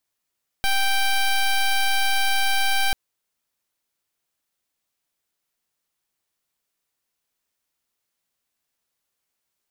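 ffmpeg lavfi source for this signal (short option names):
-f lavfi -i "aevalsrc='0.106*(2*lt(mod(783*t,1),0.11)-1)':d=2.29:s=44100"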